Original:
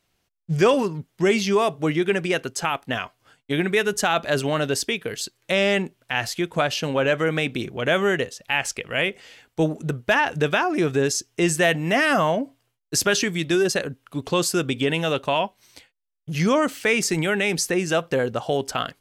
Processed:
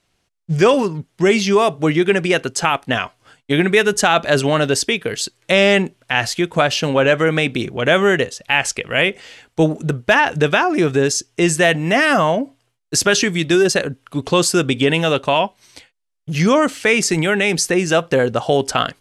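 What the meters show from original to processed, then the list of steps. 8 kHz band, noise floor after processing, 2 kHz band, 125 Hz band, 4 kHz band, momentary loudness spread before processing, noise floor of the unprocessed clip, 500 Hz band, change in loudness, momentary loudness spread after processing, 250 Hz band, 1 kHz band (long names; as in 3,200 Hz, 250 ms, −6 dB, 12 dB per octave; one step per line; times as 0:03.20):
+5.5 dB, −68 dBFS, +6.0 dB, +6.0 dB, +6.5 dB, 8 LU, −72 dBFS, +6.0 dB, +6.0 dB, 6 LU, +6.0 dB, +6.0 dB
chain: low-pass filter 11,000 Hz 24 dB per octave
in parallel at +2.5 dB: speech leveller 2 s
on the sum: level −1.5 dB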